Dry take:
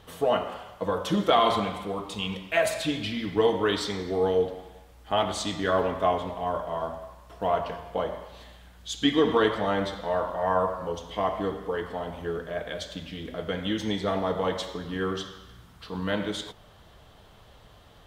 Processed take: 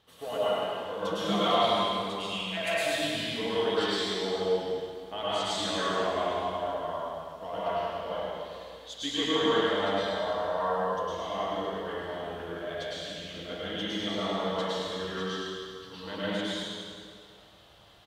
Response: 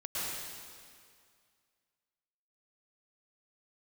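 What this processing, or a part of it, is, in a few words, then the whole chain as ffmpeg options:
PA in a hall: -filter_complex "[0:a]highpass=frequency=140:poles=1,equalizer=frequency=3800:width_type=o:width=1.2:gain=6,aecho=1:1:103:0.473[link_01];[1:a]atrim=start_sample=2205[link_02];[link_01][link_02]afir=irnorm=-1:irlink=0,volume=-8.5dB"

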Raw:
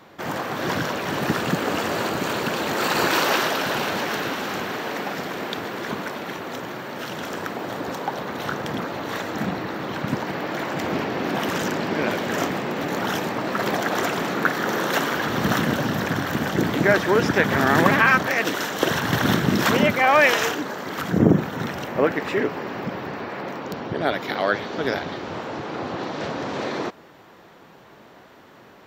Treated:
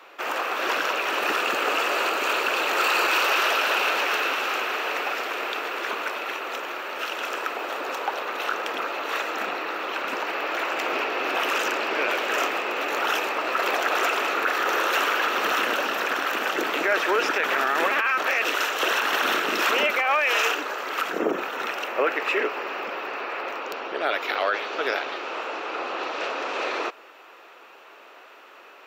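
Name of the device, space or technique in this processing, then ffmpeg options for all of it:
laptop speaker: -af "highpass=frequency=380:width=0.5412,highpass=frequency=380:width=1.3066,equalizer=frequency=1300:width_type=o:width=0.38:gain=7,equalizer=frequency=2600:width_type=o:width=0.34:gain=12,alimiter=limit=-12dB:level=0:latency=1:release=15,volume=-1dB"

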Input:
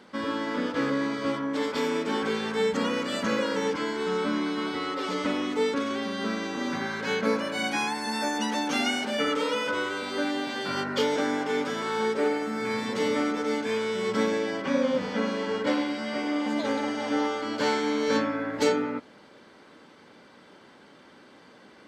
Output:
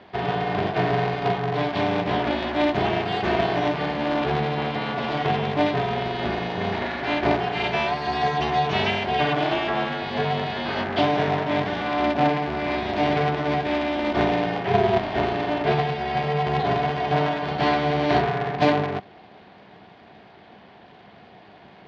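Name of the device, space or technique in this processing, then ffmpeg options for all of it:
ring modulator pedal into a guitar cabinet: -af "aeval=exprs='val(0)*sgn(sin(2*PI*150*n/s))':channel_layout=same,highpass=94,equalizer=frequency=200:width_type=q:width=4:gain=8,equalizer=frequency=500:width_type=q:width=4:gain=-3,equalizer=frequency=740:width_type=q:width=4:gain=8,equalizer=frequency=1300:width_type=q:width=4:gain=-6,lowpass=frequency=3900:width=0.5412,lowpass=frequency=3900:width=1.3066,volume=3.5dB"

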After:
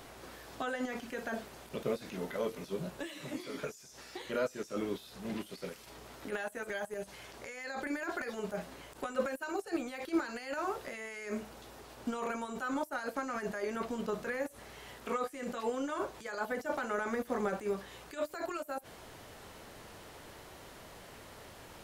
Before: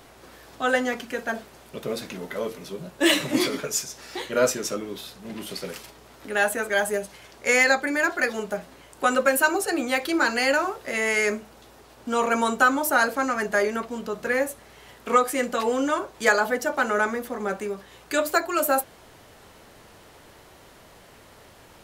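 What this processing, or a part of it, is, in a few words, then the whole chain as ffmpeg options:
de-esser from a sidechain: -filter_complex "[0:a]asplit=2[link_01][link_02];[link_02]highpass=6300,apad=whole_len=962872[link_03];[link_01][link_03]sidechaincompress=threshold=-55dB:ratio=12:attack=2:release=26,volume=-1dB"

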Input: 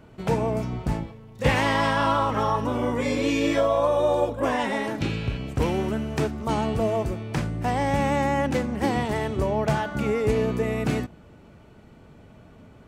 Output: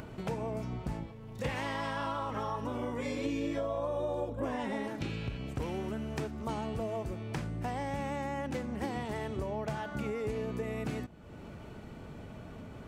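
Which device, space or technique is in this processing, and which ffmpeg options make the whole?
upward and downward compression: -filter_complex "[0:a]asettb=1/sr,asplit=3[link_01][link_02][link_03];[link_01]atrim=end=3.254[link_04];[link_02]atrim=start=3.25:end=4.88,asetpts=PTS-STARTPTS,afade=type=in:duration=0.004:curve=qsin,afade=type=out:start_time=1.626:duration=0.004:curve=qsin,lowshelf=frequency=490:gain=8.5[link_05];[link_03]atrim=start=4.876[link_06];[link_04][link_05]acrossfade=duration=0.004:curve1=hsin:curve2=qsin[link_07];[link_07][link_06]acrossfade=duration=0.004:curve1=qsin:curve2=hsin,acompressor=mode=upward:threshold=-29dB:ratio=2.5,acompressor=threshold=-26dB:ratio=4,volume=-6.5dB"

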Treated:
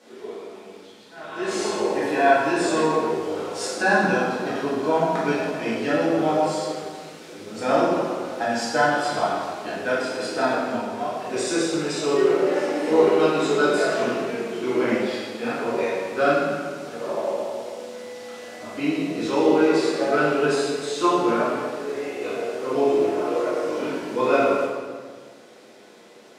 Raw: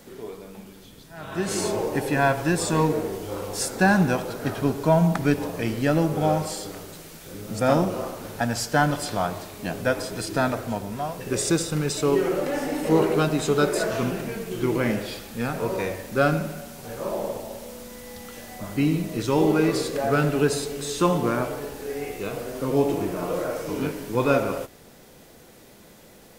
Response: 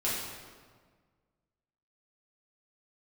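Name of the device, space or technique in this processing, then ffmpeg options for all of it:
supermarket ceiling speaker: -filter_complex "[0:a]highpass=310,lowpass=6500[link_01];[1:a]atrim=start_sample=2205[link_02];[link_01][link_02]afir=irnorm=-1:irlink=0,volume=-4.5dB"

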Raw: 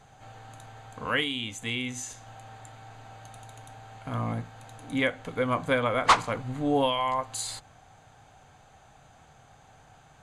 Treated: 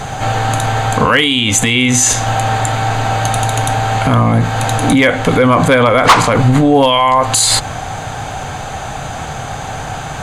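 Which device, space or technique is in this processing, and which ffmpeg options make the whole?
loud club master: -af "acompressor=threshold=-37dB:ratio=1.5,asoftclip=type=hard:threshold=-22.5dB,alimiter=level_in=33dB:limit=-1dB:release=50:level=0:latency=1,volume=-1dB"

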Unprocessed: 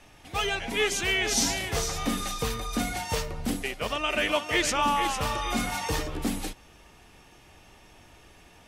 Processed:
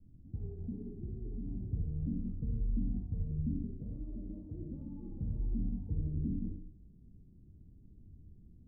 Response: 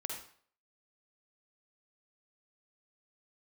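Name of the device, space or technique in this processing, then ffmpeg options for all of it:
club heard from the street: -filter_complex "[0:a]alimiter=limit=-22dB:level=0:latency=1:release=30,lowpass=frequency=230:width=0.5412,lowpass=frequency=230:width=1.3066[link_01];[1:a]atrim=start_sample=2205[link_02];[link_01][link_02]afir=irnorm=-1:irlink=0,volume=2.5dB"

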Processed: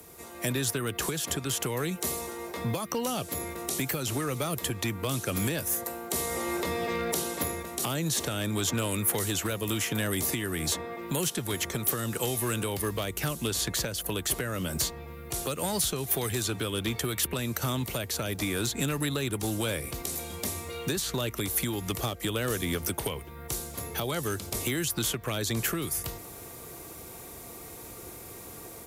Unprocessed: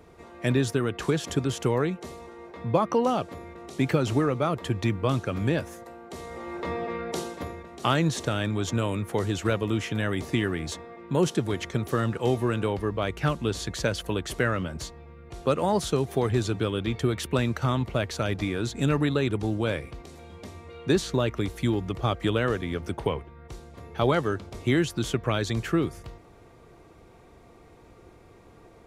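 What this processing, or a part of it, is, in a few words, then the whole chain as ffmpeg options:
FM broadcast chain: -filter_complex "[0:a]highpass=frequency=59:poles=1,dynaudnorm=framelen=310:gausssize=3:maxgain=6.5dB,acrossover=split=140|750|1600|3700[link_01][link_02][link_03][link_04][link_05];[link_01]acompressor=threshold=-35dB:ratio=4[link_06];[link_02]acompressor=threshold=-29dB:ratio=4[link_07];[link_03]acompressor=threshold=-40dB:ratio=4[link_08];[link_04]acompressor=threshold=-40dB:ratio=4[link_09];[link_05]acompressor=threshold=-49dB:ratio=4[link_10];[link_06][link_07][link_08][link_09][link_10]amix=inputs=5:normalize=0,aemphasis=mode=production:type=50fm,alimiter=limit=-19.5dB:level=0:latency=1:release=348,asoftclip=type=hard:threshold=-23dB,lowpass=frequency=15000:width=0.5412,lowpass=frequency=15000:width=1.3066,aemphasis=mode=production:type=50fm"

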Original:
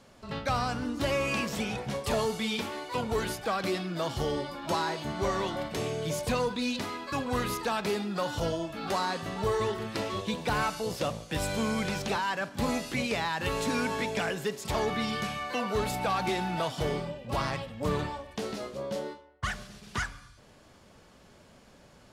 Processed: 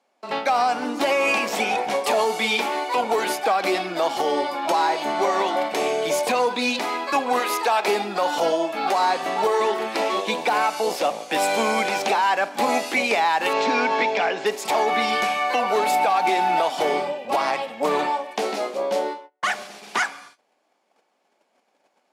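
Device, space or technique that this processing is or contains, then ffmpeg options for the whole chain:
laptop speaker: -filter_complex "[0:a]asettb=1/sr,asplit=3[link_01][link_02][link_03];[link_01]atrim=end=7.394[link_04];[link_02]atrim=start=7.39:end=7.88,asetpts=PTS-STARTPTS,afade=type=in:duration=0.004:curve=qsin,afade=type=out:start_time=0.486:duration=0.004:curve=qsin,highpass=370[link_05];[link_03]atrim=start=7.876[link_06];[link_04][link_05]acrossfade=duration=0.004:curve1=hsin:curve2=qsin[link_07];[link_07][link_06]acrossfade=duration=0.004:curve1=qsin:curve2=hsin,agate=range=-23dB:threshold=-52dB:ratio=16:detection=peak,asettb=1/sr,asplit=3[link_08][link_09][link_10];[link_08]atrim=end=13.534[link_11];[link_09]atrim=start=13.53:end=14.46,asetpts=PTS-STARTPTS,afade=type=in:duration=0.004:curve=qsin,afade=type=out:start_time=0.926:duration=0.004:curve=qsin,lowpass=frequency=5500:width=0.5412,lowpass=frequency=5500:width=1.3066[link_12];[link_10]atrim=start=14.456[link_13];[link_11][link_12]acrossfade=duration=0.004:curve1=hsin:curve2=qsin[link_14];[link_14][link_13]acrossfade=duration=0.004:curve1=qsin:curve2=hsin,highpass=frequency=270:width=0.5412,highpass=frequency=270:width=1.3066,equalizer=frequency=780:width_type=o:width=0.56:gain=10.5,equalizer=frequency=2300:width_type=o:width=0.34:gain=6,alimiter=limit=-20dB:level=0:latency=1:release=153,volume=8.5dB"

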